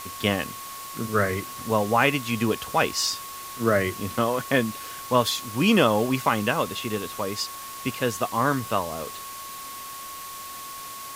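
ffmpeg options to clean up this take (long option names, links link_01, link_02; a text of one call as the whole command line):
ffmpeg -i in.wav -af "bandreject=frequency=1100:width=30,afftdn=noise_reduction=30:noise_floor=-38" out.wav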